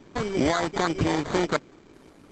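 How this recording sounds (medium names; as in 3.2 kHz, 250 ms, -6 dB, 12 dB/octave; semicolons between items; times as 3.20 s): aliases and images of a low sample rate 2.7 kHz, jitter 0%; Opus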